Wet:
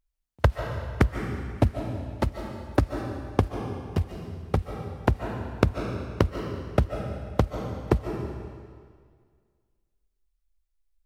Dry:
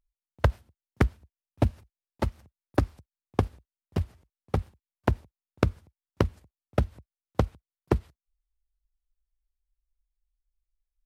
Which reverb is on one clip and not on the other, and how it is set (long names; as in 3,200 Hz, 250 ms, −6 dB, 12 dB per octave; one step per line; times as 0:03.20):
comb and all-pass reverb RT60 1.9 s, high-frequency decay 0.95×, pre-delay 105 ms, DRR 4.5 dB
level +2 dB